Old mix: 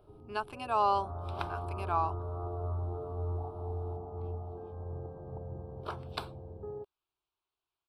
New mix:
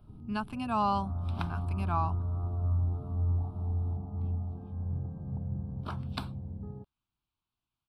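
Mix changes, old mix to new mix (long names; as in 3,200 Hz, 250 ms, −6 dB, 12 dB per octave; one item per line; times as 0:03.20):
first sound −4.5 dB
master: add low shelf with overshoot 300 Hz +10.5 dB, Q 3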